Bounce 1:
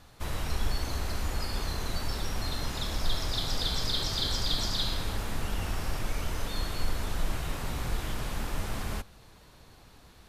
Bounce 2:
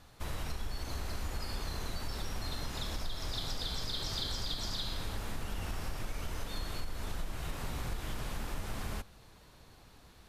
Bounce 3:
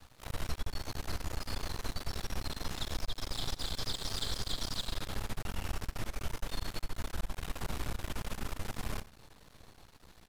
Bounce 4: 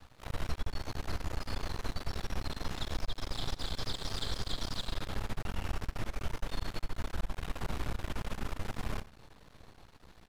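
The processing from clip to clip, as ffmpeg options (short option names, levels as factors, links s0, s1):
-af "acompressor=threshold=0.0355:ratio=6,volume=0.708"
-af "aeval=exprs='max(val(0),0)':c=same,aecho=1:1:90:0.141,volume=1.5"
-af "highshelf=f=5300:g=-9.5,volume=1.19"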